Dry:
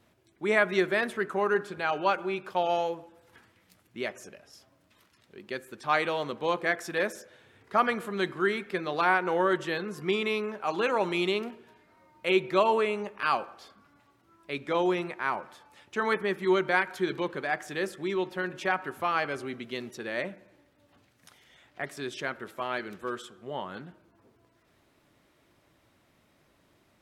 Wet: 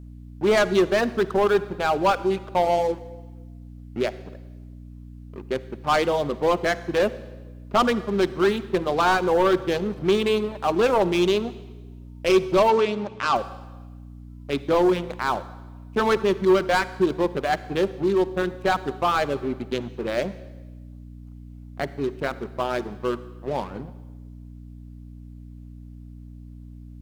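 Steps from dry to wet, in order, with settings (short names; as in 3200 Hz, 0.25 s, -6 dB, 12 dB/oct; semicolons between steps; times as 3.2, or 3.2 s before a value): Wiener smoothing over 25 samples; reverb removal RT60 0.64 s; sample leveller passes 3; hum 60 Hz, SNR 17 dB; dynamic EQ 1900 Hz, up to -6 dB, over -36 dBFS, Q 1.6; reverb RT60 1.2 s, pre-delay 44 ms, DRR 15.5 dB; bit-crush 12-bit; 12.7–13.36 Chebyshev band-pass 110–5900 Hz, order 2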